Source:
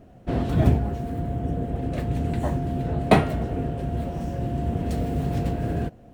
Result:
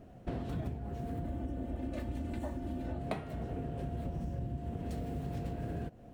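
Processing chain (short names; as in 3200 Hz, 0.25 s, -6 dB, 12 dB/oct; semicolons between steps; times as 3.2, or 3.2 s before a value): 1.24–2.98 comb 3.4 ms, depth 75%; 4.05–4.58 low shelf 220 Hz +9 dB; compressor 12:1, threshold -30 dBFS, peak gain reduction 20.5 dB; gain -4 dB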